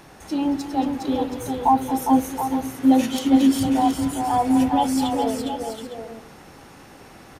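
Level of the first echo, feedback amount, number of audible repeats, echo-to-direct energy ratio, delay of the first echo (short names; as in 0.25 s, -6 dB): -14.5 dB, no steady repeat, 4, -3.0 dB, 0.226 s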